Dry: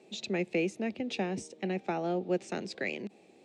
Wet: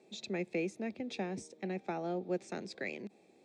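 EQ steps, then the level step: notch 2900 Hz, Q 6.4; -5.0 dB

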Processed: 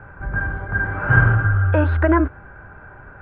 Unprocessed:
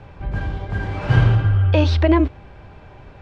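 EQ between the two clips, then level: synth low-pass 1500 Hz, resonance Q 8.2; air absorption 220 m; -1.5 dB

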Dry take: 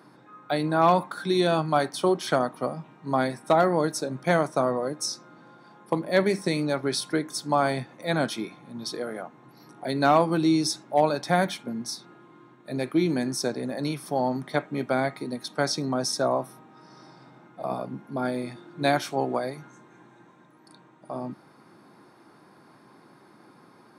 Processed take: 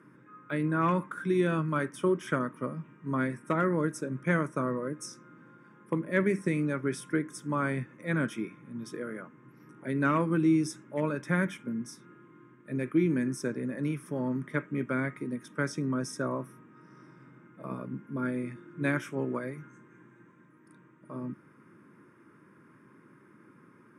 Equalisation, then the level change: LPF 8300 Hz 12 dB/oct; bell 4500 Hz -5 dB 2.2 oct; fixed phaser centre 1800 Hz, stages 4; 0.0 dB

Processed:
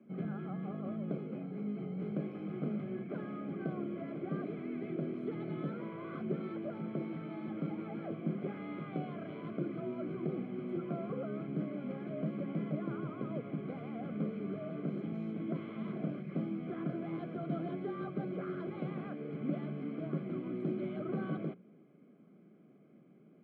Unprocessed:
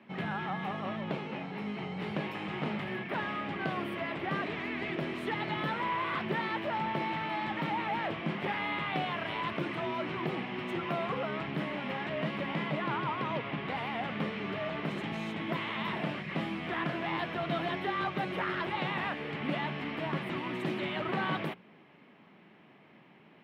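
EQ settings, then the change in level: running mean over 48 samples; HPF 140 Hz 24 dB/oct; +1.0 dB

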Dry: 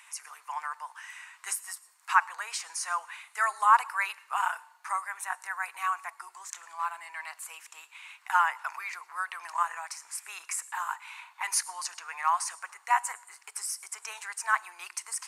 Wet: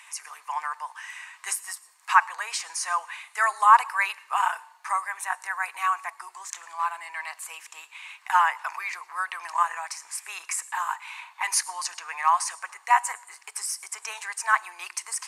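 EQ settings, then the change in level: high shelf 11000 Hz -6 dB; notch 1400 Hz, Q 9.7; +5.5 dB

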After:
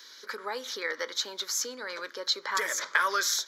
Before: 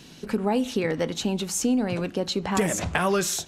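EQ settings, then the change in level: HPF 590 Hz 24 dB/oct; fixed phaser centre 2700 Hz, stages 6; +4.0 dB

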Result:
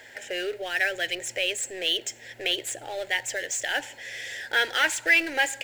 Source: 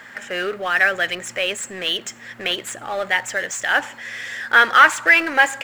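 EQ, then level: dynamic EQ 610 Hz, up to -6 dB, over -31 dBFS, Q 1; fixed phaser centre 490 Hz, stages 4; -1.0 dB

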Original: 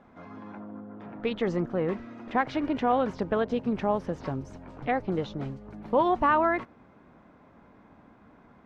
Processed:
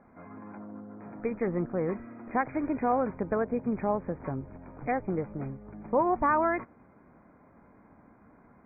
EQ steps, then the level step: brick-wall FIR low-pass 2500 Hz; air absorption 180 m; -1.5 dB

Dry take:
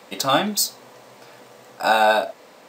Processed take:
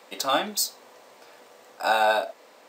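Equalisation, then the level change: HPF 300 Hz 12 dB/oct; -4.5 dB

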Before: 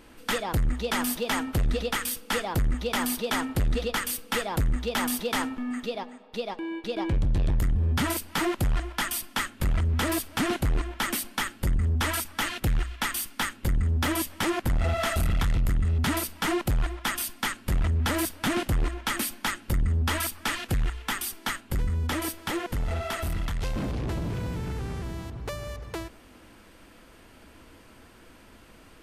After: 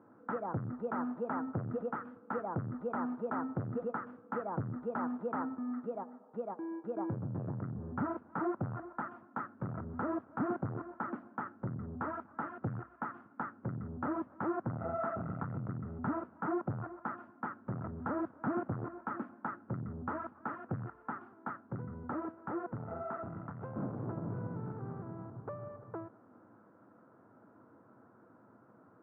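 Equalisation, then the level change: Chebyshev band-pass 110–1400 Hz, order 4; -6.0 dB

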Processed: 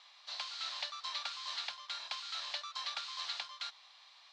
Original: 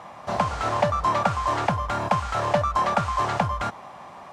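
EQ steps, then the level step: ladder band-pass 4500 Hz, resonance 65%; air absorption 56 m; high shelf 3500 Hz -7.5 dB; +13.0 dB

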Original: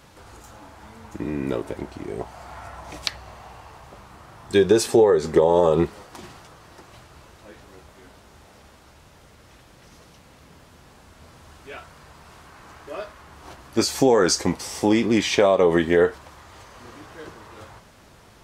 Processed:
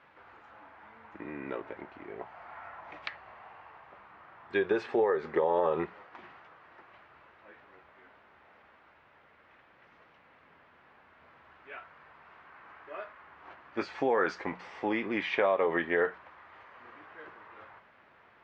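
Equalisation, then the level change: LPF 2100 Hz 24 dB/oct; tilt +4.5 dB/oct; notches 60/120/180 Hz; -6.0 dB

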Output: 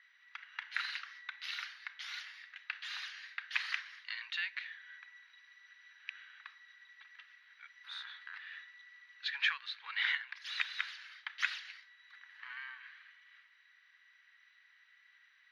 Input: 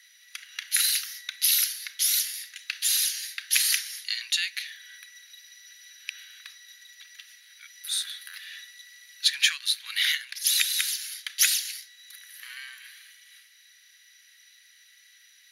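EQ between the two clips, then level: band-pass 830 Hz, Q 2.4; air absorption 250 m; +11.5 dB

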